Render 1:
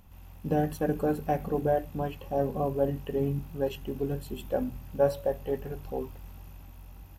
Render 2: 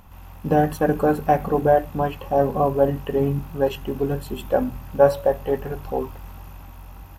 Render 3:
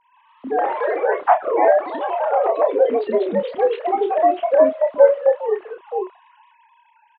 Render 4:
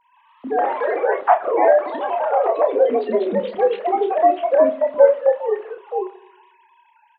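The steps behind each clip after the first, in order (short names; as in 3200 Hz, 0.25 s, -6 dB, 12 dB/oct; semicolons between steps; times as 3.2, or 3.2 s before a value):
bell 1100 Hz +7.5 dB 1.5 oct; gain +6.5 dB
sine-wave speech; echoes that change speed 0.129 s, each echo +2 st, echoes 3; doubler 30 ms -7 dB
reverb RT60 0.85 s, pre-delay 4 ms, DRR 14.5 dB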